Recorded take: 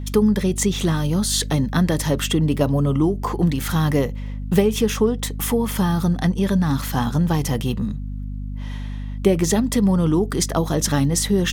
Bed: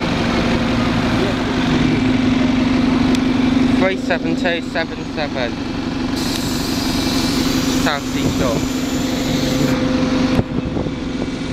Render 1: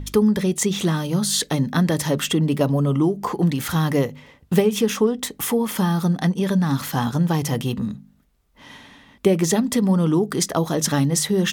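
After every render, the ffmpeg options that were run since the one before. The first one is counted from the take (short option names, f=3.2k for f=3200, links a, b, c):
-af "bandreject=f=50:t=h:w=4,bandreject=f=100:t=h:w=4,bandreject=f=150:t=h:w=4,bandreject=f=200:t=h:w=4,bandreject=f=250:t=h:w=4"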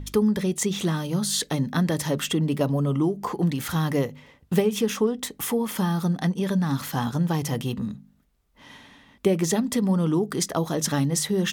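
-af "volume=-4dB"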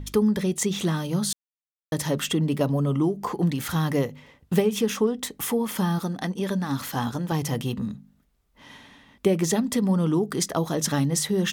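-filter_complex "[0:a]asettb=1/sr,asplit=3[a][b][c];[a]atrim=end=5.984[d];[b]atrim=start=5.98:end=7.32,asetpts=PTS-STARTPTS,afade=t=in:d=0.004:c=qsin,afade=t=out:st=1.336:d=0.004:c=qsin,equalizer=f=160:t=o:w=0.25:g=-12.5[e];[c]atrim=start=7.316[f];[d][e]acrossfade=d=0.004:c1=hsin:c2=qsin[g];[g][f]acrossfade=d=0.004:c1=qsin:c2=hsin,asplit=3[h][i][j];[h]atrim=end=1.33,asetpts=PTS-STARTPTS,afade=t=out:st=1.326:d=0.004:c=hsin[k];[i]atrim=start=1.33:end=1.92,asetpts=PTS-STARTPTS,volume=0[l];[j]atrim=start=1.92,asetpts=PTS-STARTPTS,afade=t=in:d=0.004:c=hsin[m];[k][l][m]concat=n=3:v=0:a=1"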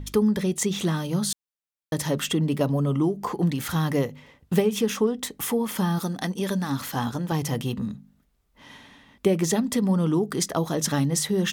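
-filter_complex "[0:a]asettb=1/sr,asplit=3[a][b][c];[a]atrim=end=5.974[d];[b]atrim=start=5.97:end=6.7,asetpts=PTS-STARTPTS,afade=t=in:d=0.004:c=qsin,afade=t=out:st=0.726:d=0.004:c=qsin,highshelf=f=4k:g=6.5[e];[c]atrim=start=6.696[f];[d][e]acrossfade=d=0.004:c1=hsin:c2=qsin[g];[g][f]acrossfade=d=0.004:c1=qsin:c2=hsin"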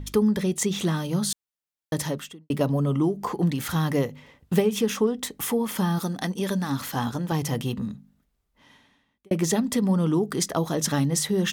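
-filter_complex "[0:a]asplit=3[a][b][c];[a]atrim=end=2.5,asetpts=PTS-STARTPTS,afade=t=out:st=2.03:d=0.47:c=qua[d];[b]atrim=start=2.5:end=9.31,asetpts=PTS-STARTPTS,afade=t=in:d=0.004:c=hsin,afade=t=out:st=5.19:d=1.62[e];[c]atrim=start=9.31,asetpts=PTS-STARTPTS,afade=t=in:d=0.004:c=hsin[f];[d][e][f]concat=n=3:v=0:a=1"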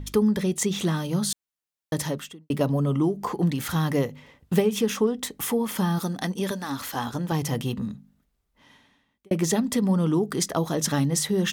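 -filter_complex "[0:a]asettb=1/sr,asplit=3[a][b][c];[a]atrim=end=6.514[d];[b]atrim=start=6.51:end=7.14,asetpts=PTS-STARTPTS,afade=t=in:d=0.004:c=qsin,afade=t=out:st=0.626:d=0.004:c=qsin,equalizer=f=160:w=1.5:g=-11.5[e];[c]atrim=start=7.136[f];[d][e]acrossfade=d=0.004:c1=hsin:c2=qsin[g];[g][f]acrossfade=d=0.004:c1=qsin:c2=hsin"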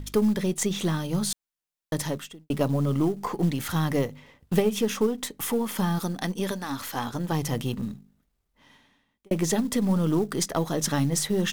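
-af "aeval=exprs='if(lt(val(0),0),0.708*val(0),val(0))':c=same,acrusher=bits=7:mode=log:mix=0:aa=0.000001"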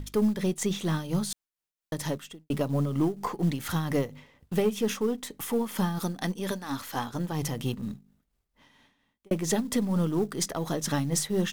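-af "tremolo=f=4.3:d=0.53,asoftclip=type=tanh:threshold=-13.5dB"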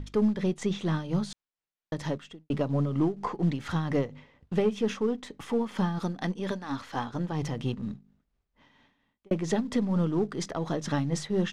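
-af "lowpass=7.2k,aemphasis=mode=reproduction:type=50kf"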